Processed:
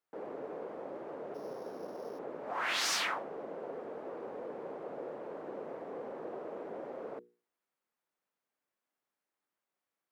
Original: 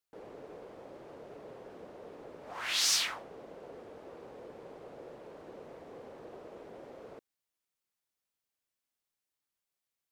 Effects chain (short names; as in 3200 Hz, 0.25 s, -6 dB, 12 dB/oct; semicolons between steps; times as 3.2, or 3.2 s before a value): 1.34–2.19 sample sorter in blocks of 8 samples; three-band isolator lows -20 dB, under 160 Hz, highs -14 dB, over 2000 Hz; notches 60/120/180/240/300/360/420/480 Hz; gain +7 dB